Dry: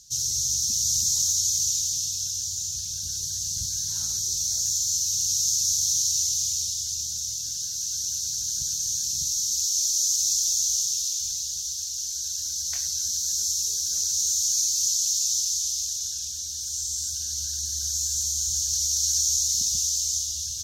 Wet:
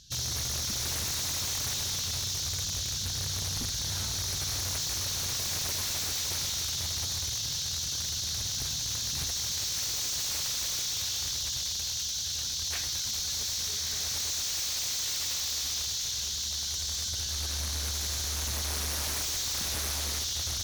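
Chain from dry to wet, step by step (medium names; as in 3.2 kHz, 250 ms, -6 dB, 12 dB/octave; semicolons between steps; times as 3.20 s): resonant high shelf 4.6 kHz -14 dB, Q 1.5; echo that smears into a reverb 1229 ms, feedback 60%, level -6 dB; wavefolder -34.5 dBFS; trim +7.5 dB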